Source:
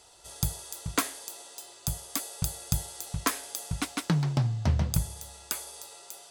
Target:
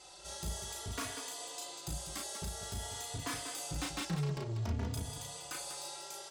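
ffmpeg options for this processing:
ffmpeg -i in.wav -filter_complex "[0:a]lowpass=8500,alimiter=limit=-19.5dB:level=0:latency=1:release=220,asoftclip=type=tanh:threshold=-35dB,lowshelf=frequency=110:gain=-5,asplit=2[link_01][link_02];[link_02]aecho=0:1:34.99|192.4:0.708|0.398[link_03];[link_01][link_03]amix=inputs=2:normalize=0,asplit=2[link_04][link_05];[link_05]adelay=3.4,afreqshift=0.52[link_06];[link_04][link_06]amix=inputs=2:normalize=1,volume=4.5dB" out.wav

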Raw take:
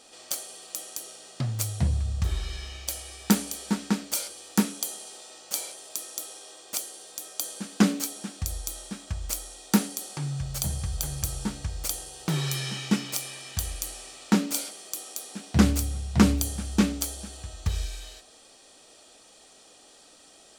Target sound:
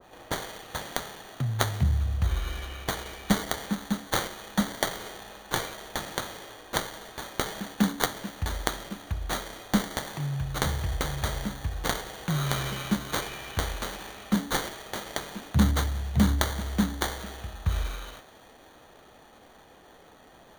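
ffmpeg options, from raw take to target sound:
ffmpeg -i in.wav -filter_complex "[0:a]acrossover=split=220|2800[link_01][link_02][link_03];[link_02]acompressor=threshold=-43dB:ratio=6[link_04];[link_03]acrusher=samples=17:mix=1:aa=0.000001[link_05];[link_01][link_04][link_05]amix=inputs=3:normalize=0,adynamicequalizer=threshold=0.00398:dfrequency=1500:dqfactor=0.7:tfrequency=1500:tqfactor=0.7:attack=5:release=100:ratio=0.375:range=3.5:mode=boostabove:tftype=highshelf,volume=1dB" out.wav

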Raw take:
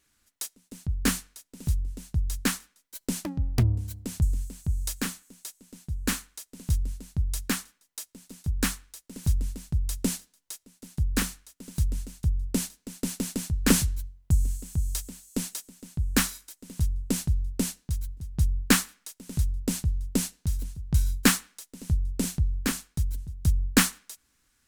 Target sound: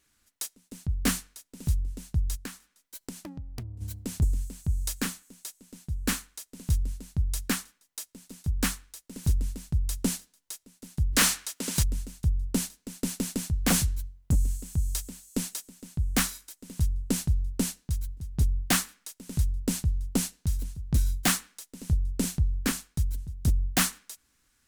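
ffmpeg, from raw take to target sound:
ffmpeg -i in.wav -filter_complex "[0:a]asplit=3[link_01][link_02][link_03];[link_01]afade=type=out:start_time=2.35:duration=0.02[link_04];[link_02]acompressor=threshold=-39dB:ratio=4,afade=type=in:start_time=2.35:duration=0.02,afade=type=out:start_time=3.8:duration=0.02[link_05];[link_03]afade=type=in:start_time=3.8:duration=0.02[link_06];[link_04][link_05][link_06]amix=inputs=3:normalize=0,asplit=3[link_07][link_08][link_09];[link_07]afade=type=out:start_time=11.12:duration=0.02[link_10];[link_08]asplit=2[link_11][link_12];[link_12]highpass=frequency=720:poles=1,volume=24dB,asoftclip=type=tanh:threshold=-10.5dB[link_13];[link_11][link_13]amix=inputs=2:normalize=0,lowpass=frequency=7800:poles=1,volume=-6dB,afade=type=in:start_time=11.12:duration=0.02,afade=type=out:start_time=11.82:duration=0.02[link_14];[link_09]afade=type=in:start_time=11.82:duration=0.02[link_15];[link_10][link_14][link_15]amix=inputs=3:normalize=0,aeval=exprs='0.158*(abs(mod(val(0)/0.158+3,4)-2)-1)':channel_layout=same" out.wav

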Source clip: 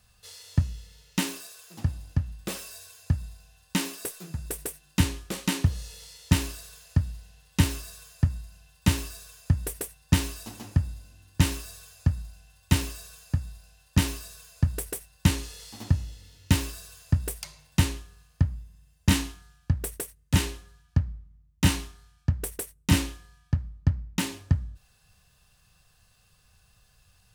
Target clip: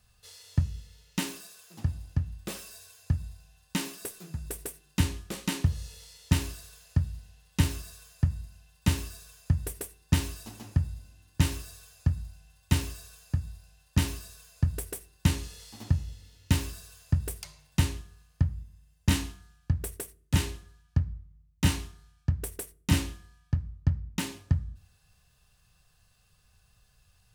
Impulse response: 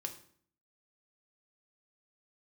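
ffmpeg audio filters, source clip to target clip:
-filter_complex "[0:a]asplit=2[link_01][link_02];[1:a]atrim=start_sample=2205,asetrate=52920,aresample=44100,lowshelf=frequency=220:gain=10[link_03];[link_02][link_03]afir=irnorm=-1:irlink=0,volume=-10dB[link_04];[link_01][link_04]amix=inputs=2:normalize=0,volume=-5.5dB"

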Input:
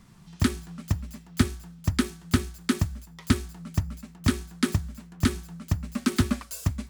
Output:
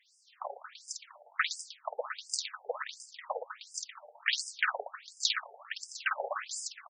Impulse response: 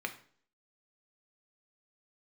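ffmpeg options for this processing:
-filter_complex "[0:a]dynaudnorm=framelen=250:gausssize=7:maxgain=6dB,aecho=1:1:50|115|199.5|309.4|452.2:0.631|0.398|0.251|0.158|0.1,asettb=1/sr,asplit=3[link_01][link_02][link_03];[link_01]atrim=end=1.894[link_04];[link_02]atrim=start=1.89:end=3.72,asetpts=PTS-STARTPTS,afade=type=in:duration=0.004:curve=qsin,afade=type=out:start_time=1.826:duration=0.004:curve=qsin,aeval=exprs='(tanh(5.01*val(0)+0.4)-tanh(0.4))/5.01':channel_layout=same[link_05];[link_03]atrim=start=3.716[link_06];[link_04][link_05]acrossfade=duration=0.004:curve1=hsin:curve2=qsin[link_07];[link_07][link_06]acrossfade=duration=0.004:curve1=qsin:curve2=hsin,asplit=2[link_08][link_09];[link_09]acrusher=bits=2:mix=0:aa=0.5,volume=-8.5dB[link_10];[link_08][link_10]amix=inputs=2:normalize=0,afftfilt=real='re*between(b*sr/1024,600*pow(6900/600,0.5+0.5*sin(2*PI*1.4*pts/sr))/1.41,600*pow(6900/600,0.5+0.5*sin(2*PI*1.4*pts/sr))*1.41)':imag='im*between(b*sr/1024,600*pow(6900/600,0.5+0.5*sin(2*PI*1.4*pts/sr))/1.41,600*pow(6900/600,0.5+0.5*sin(2*PI*1.4*pts/sr))*1.41)':win_size=1024:overlap=0.75"

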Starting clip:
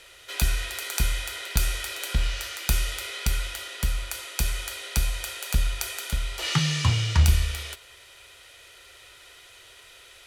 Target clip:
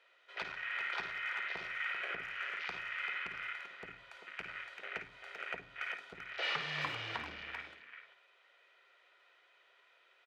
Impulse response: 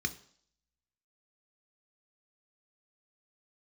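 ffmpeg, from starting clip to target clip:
-filter_complex "[0:a]afwtdn=0.02,acompressor=threshold=-27dB:ratio=5,asoftclip=type=hard:threshold=-29dB,highpass=570,lowpass=2100,asplit=2[link_01][link_02];[link_02]adelay=390,highpass=300,lowpass=3400,asoftclip=type=hard:threshold=-35.5dB,volume=-7dB[link_03];[link_01][link_03]amix=inputs=2:normalize=0,asplit=2[link_04][link_05];[1:a]atrim=start_sample=2205,adelay=53[link_06];[link_05][link_06]afir=irnorm=-1:irlink=0,volume=-12.5dB[link_07];[link_04][link_07]amix=inputs=2:normalize=0,volume=3.5dB"

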